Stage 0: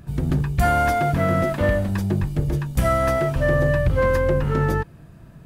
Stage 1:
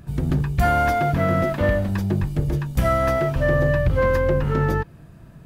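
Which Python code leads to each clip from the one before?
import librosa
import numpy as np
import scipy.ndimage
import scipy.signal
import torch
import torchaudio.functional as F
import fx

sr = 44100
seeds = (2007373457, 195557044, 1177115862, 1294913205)

y = fx.dynamic_eq(x, sr, hz=9000.0, q=1.3, threshold_db=-52.0, ratio=4.0, max_db=-6)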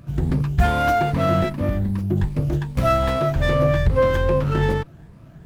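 y = fx.spec_ripple(x, sr, per_octave=0.93, drift_hz=2.5, depth_db=9)
y = fx.spec_box(y, sr, start_s=1.49, length_s=0.68, low_hz=400.0, high_hz=9700.0, gain_db=-9)
y = fx.running_max(y, sr, window=9)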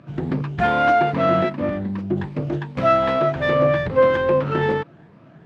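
y = fx.bandpass_edges(x, sr, low_hz=210.0, high_hz=3200.0)
y = F.gain(torch.from_numpy(y), 3.0).numpy()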